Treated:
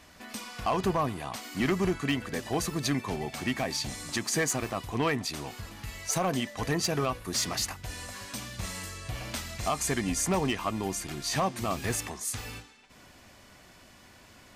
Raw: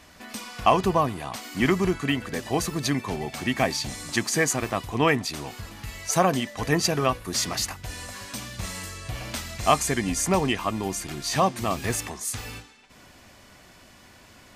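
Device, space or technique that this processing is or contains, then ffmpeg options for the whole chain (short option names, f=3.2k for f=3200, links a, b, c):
limiter into clipper: -af "alimiter=limit=-12.5dB:level=0:latency=1:release=112,asoftclip=type=hard:threshold=-17.5dB,volume=-3dB"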